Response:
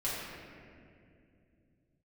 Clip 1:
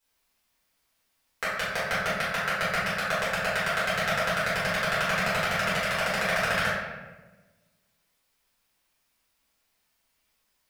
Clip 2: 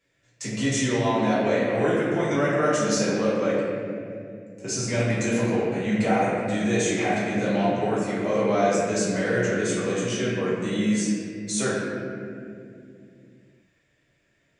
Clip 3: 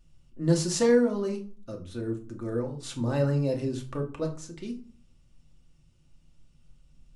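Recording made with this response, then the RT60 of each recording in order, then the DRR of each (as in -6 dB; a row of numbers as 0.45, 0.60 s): 2; 1.2, 2.5, 0.45 s; -12.0, -9.0, 1.5 dB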